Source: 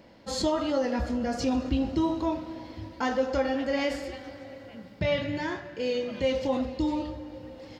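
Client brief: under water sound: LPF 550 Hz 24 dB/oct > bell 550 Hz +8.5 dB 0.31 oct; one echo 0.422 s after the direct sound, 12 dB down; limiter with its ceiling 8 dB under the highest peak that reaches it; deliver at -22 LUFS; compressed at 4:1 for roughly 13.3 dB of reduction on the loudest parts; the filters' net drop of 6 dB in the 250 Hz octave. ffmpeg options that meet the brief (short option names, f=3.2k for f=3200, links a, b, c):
-af "equalizer=f=250:t=o:g=-7.5,acompressor=threshold=-40dB:ratio=4,alimiter=level_in=11.5dB:limit=-24dB:level=0:latency=1,volume=-11.5dB,lowpass=f=550:w=0.5412,lowpass=f=550:w=1.3066,equalizer=f=550:t=o:w=0.31:g=8.5,aecho=1:1:422:0.251,volume=21dB"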